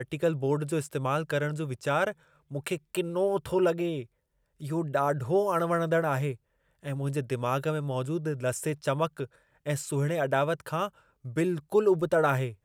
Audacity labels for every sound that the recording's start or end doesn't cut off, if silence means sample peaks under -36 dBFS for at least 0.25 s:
2.520000	4.020000	sound
4.620000	6.340000	sound
6.850000	9.250000	sound
9.660000	10.880000	sound